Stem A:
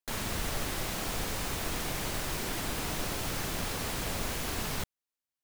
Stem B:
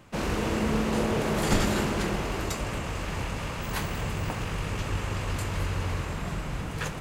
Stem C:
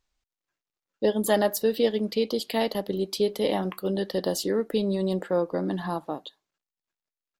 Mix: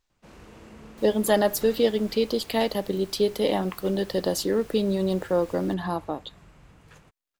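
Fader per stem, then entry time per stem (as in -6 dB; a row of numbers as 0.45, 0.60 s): -16.0, -20.0, +1.5 dB; 0.90, 0.10, 0.00 s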